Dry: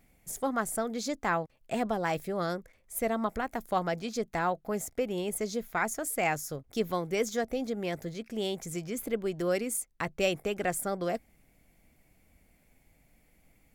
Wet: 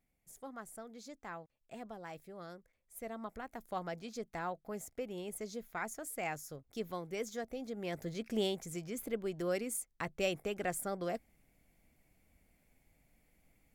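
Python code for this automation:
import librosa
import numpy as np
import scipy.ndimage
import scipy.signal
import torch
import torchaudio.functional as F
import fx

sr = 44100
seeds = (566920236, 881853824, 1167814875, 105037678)

y = fx.gain(x, sr, db=fx.line((2.52, -17.0), (3.85, -10.0), (7.63, -10.0), (8.36, 1.0), (8.63, -6.0)))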